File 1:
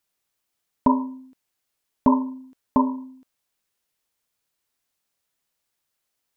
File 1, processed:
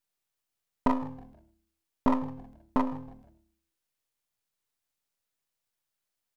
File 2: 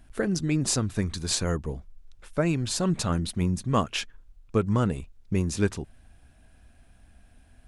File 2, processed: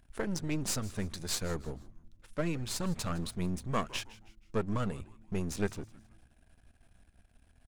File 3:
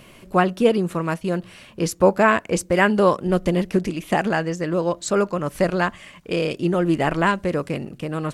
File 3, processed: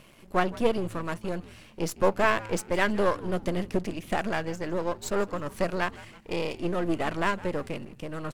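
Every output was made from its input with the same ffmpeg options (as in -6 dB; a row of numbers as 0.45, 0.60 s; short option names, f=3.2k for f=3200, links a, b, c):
-filter_complex "[0:a]aeval=exprs='if(lt(val(0),0),0.251*val(0),val(0))':c=same,asplit=4[a][b][c][d];[b]adelay=159,afreqshift=-110,volume=-19dB[e];[c]adelay=318,afreqshift=-220,volume=-27.2dB[f];[d]adelay=477,afreqshift=-330,volume=-35.4dB[g];[a][e][f][g]amix=inputs=4:normalize=0,volume=-4dB"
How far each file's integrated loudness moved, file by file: -8.0, -8.5, -8.0 LU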